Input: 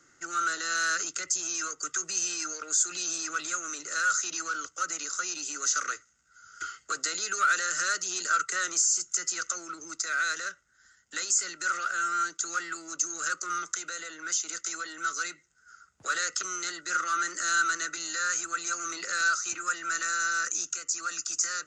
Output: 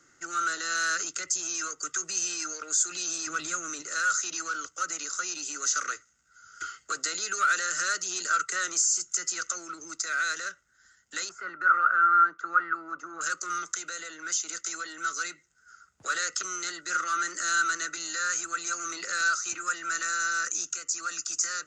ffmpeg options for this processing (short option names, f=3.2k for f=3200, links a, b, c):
-filter_complex "[0:a]asettb=1/sr,asplit=3[a][b][c];[a]atrim=end=3.274[d];[b]atrim=start=3.27:end=3.82,asetpts=PTS-STARTPTS,afade=t=in:d=0.004:c=qsin,afade=t=out:st=0.546:d=0.004:c=qsin,equalizer=f=89:t=o:w=2.6:g=12[e];[c]atrim=start=3.816[f];[d][e]acrossfade=d=0.004:c1=hsin:c2=qsin[g];[g][f]acrossfade=d=0.004:c1=qsin:c2=hsin,asettb=1/sr,asplit=3[h][i][j];[h]atrim=end=11.294[k];[i]atrim=start=11.29:end=13.21,asetpts=PTS-STARTPTS,afade=t=in:d=0.004:c=qsin,afade=t=out:st=1.916:d=0.004:c=qsin,lowpass=f=1.3k:t=q:w=3.1[l];[j]atrim=start=13.206[m];[k][l]acrossfade=d=0.004:c1=hsin:c2=qsin[n];[n][m]acrossfade=d=0.004:c1=qsin:c2=hsin"